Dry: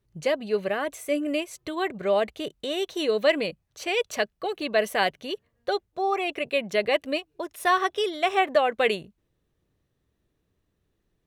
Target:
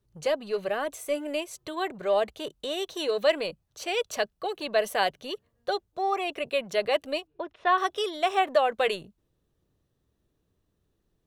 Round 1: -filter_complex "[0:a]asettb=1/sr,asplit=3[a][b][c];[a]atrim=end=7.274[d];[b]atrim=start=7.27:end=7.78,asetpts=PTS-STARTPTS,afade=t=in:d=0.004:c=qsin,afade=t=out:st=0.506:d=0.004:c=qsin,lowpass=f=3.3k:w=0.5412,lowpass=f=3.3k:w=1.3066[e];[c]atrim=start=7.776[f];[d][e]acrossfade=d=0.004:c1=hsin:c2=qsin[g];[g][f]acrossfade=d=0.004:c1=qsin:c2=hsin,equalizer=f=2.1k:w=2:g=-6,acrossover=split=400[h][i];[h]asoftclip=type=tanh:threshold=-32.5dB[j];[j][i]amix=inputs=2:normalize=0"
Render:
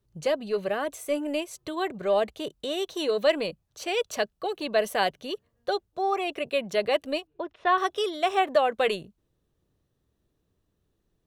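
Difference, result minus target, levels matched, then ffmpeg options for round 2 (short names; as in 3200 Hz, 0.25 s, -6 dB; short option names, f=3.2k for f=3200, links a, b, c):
soft clip: distortion -7 dB
-filter_complex "[0:a]asettb=1/sr,asplit=3[a][b][c];[a]atrim=end=7.274[d];[b]atrim=start=7.27:end=7.78,asetpts=PTS-STARTPTS,afade=t=in:d=0.004:c=qsin,afade=t=out:st=0.506:d=0.004:c=qsin,lowpass=f=3.3k:w=0.5412,lowpass=f=3.3k:w=1.3066[e];[c]atrim=start=7.776[f];[d][e]acrossfade=d=0.004:c1=hsin:c2=qsin[g];[g][f]acrossfade=d=0.004:c1=qsin:c2=hsin,equalizer=f=2.1k:w=2:g=-6,acrossover=split=400[h][i];[h]asoftclip=type=tanh:threshold=-42.5dB[j];[j][i]amix=inputs=2:normalize=0"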